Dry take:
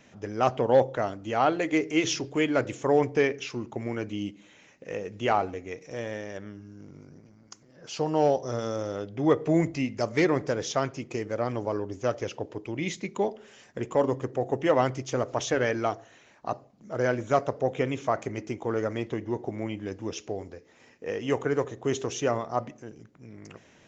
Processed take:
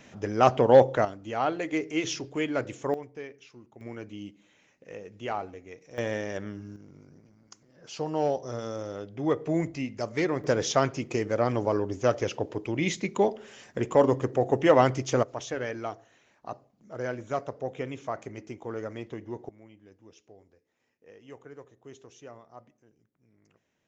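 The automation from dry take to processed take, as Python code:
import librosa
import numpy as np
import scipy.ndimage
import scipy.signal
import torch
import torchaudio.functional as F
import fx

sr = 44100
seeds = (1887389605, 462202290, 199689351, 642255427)

y = fx.gain(x, sr, db=fx.steps((0.0, 4.0), (1.05, -4.0), (2.94, -17.0), (3.81, -8.0), (5.98, 4.0), (6.76, -4.0), (10.44, 3.5), (15.23, -7.0), (19.49, -20.0)))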